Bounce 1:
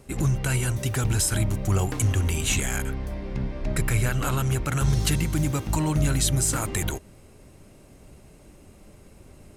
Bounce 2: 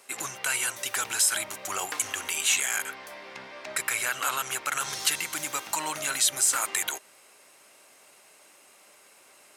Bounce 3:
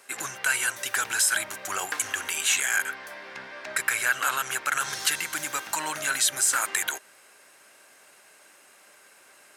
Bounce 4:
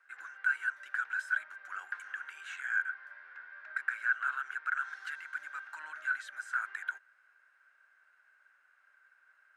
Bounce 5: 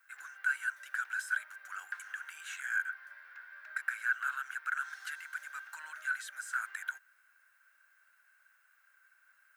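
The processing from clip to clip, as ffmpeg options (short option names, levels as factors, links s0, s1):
-filter_complex "[0:a]highpass=1000,asplit=2[s0][s1];[s1]alimiter=limit=0.0708:level=0:latency=1,volume=0.794[s2];[s0][s2]amix=inputs=2:normalize=0"
-af "equalizer=f=1600:w=4:g=8.5"
-af "bandpass=f=1500:t=q:w=8.1:csg=0,volume=0.794"
-af "aemphasis=mode=production:type=riaa,volume=0.708"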